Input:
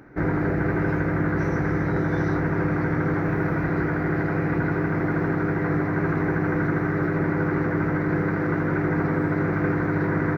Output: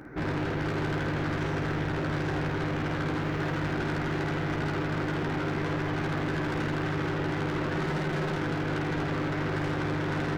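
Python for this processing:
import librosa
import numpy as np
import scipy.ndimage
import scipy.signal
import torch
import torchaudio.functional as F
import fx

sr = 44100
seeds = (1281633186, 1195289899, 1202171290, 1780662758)

y = fx.comb(x, sr, ms=5.4, depth=0.77, at=(7.75, 8.37))
y = 10.0 ** (-31.5 / 20.0) * np.tanh(y / 10.0 ** (-31.5 / 20.0))
y = fx.room_early_taps(y, sr, ms=(13, 52), db=(-8.5, -5.0))
y = y * librosa.db_to_amplitude(2.0)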